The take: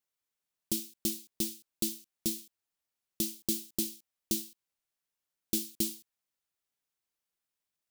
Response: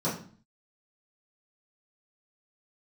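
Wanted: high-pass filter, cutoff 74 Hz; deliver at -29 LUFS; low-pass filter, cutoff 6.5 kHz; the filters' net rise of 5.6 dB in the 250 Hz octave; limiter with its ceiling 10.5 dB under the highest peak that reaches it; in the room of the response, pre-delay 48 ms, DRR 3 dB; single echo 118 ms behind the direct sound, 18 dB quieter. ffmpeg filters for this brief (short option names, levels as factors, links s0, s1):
-filter_complex "[0:a]highpass=74,lowpass=6500,equalizer=f=250:t=o:g=7.5,alimiter=level_in=1.26:limit=0.0631:level=0:latency=1,volume=0.794,aecho=1:1:118:0.126,asplit=2[s0][s1];[1:a]atrim=start_sample=2205,adelay=48[s2];[s1][s2]afir=irnorm=-1:irlink=0,volume=0.237[s3];[s0][s3]amix=inputs=2:normalize=0,volume=1.88"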